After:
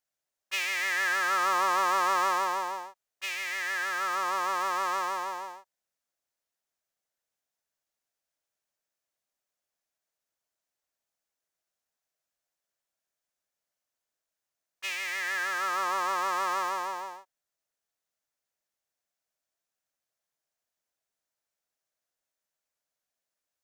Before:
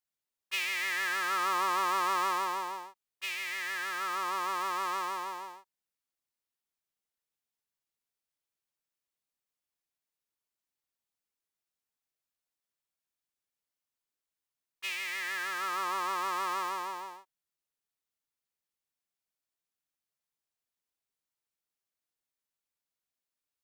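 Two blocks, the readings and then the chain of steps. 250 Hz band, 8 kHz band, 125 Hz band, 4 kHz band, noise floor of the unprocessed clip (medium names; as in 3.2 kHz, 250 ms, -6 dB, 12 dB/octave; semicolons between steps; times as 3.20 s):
+1.5 dB, +3.5 dB, no reading, +1.5 dB, under -85 dBFS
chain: fifteen-band graphic EQ 630 Hz +10 dB, 1.6 kHz +5 dB, 6.3 kHz +5 dB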